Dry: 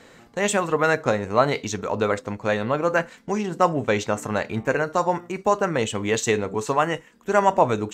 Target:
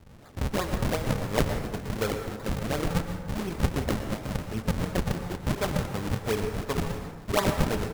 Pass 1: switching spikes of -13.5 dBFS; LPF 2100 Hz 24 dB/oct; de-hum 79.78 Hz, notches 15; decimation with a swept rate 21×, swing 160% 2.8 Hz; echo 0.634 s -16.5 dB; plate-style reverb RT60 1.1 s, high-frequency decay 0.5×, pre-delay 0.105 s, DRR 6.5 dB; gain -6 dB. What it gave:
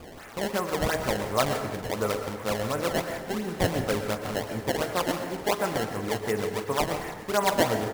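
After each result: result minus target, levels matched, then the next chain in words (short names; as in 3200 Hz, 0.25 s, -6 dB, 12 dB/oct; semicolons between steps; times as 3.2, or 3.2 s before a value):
decimation with a swept rate: distortion -12 dB; switching spikes: distortion +7 dB
switching spikes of -13.5 dBFS; LPF 2100 Hz 24 dB/oct; de-hum 79.78 Hz, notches 15; decimation with a swept rate 75×, swing 160% 2.8 Hz; echo 0.634 s -16.5 dB; plate-style reverb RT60 1.1 s, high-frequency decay 0.5×, pre-delay 0.105 s, DRR 6.5 dB; gain -6 dB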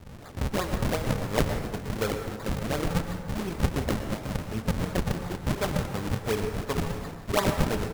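switching spikes: distortion +7 dB
switching spikes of -20.5 dBFS; LPF 2100 Hz 24 dB/oct; de-hum 79.78 Hz, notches 15; decimation with a swept rate 75×, swing 160% 2.8 Hz; echo 0.634 s -16.5 dB; plate-style reverb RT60 1.1 s, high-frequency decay 0.5×, pre-delay 0.105 s, DRR 6.5 dB; gain -6 dB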